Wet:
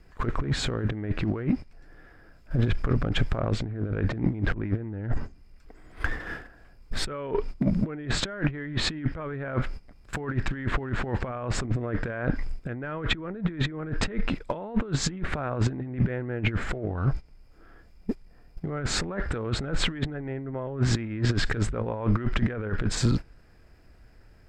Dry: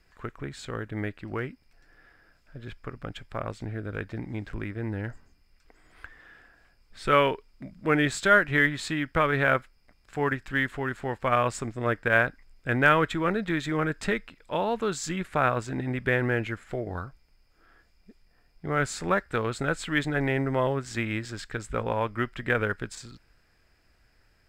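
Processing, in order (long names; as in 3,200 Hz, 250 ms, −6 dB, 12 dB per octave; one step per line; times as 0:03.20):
mu-law and A-law mismatch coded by mu
in parallel at −9.5 dB: asymmetric clip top −15.5 dBFS
on the sum: noise gate −43 dBFS, range −17 dB
tilt shelving filter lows +6 dB
brickwall limiter −15.5 dBFS, peak gain reduction 10 dB
treble cut that deepens with the level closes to 2,600 Hz, closed at −20.5 dBFS
compressor whose output falls as the input rises −31 dBFS, ratio −0.5
level +5.5 dB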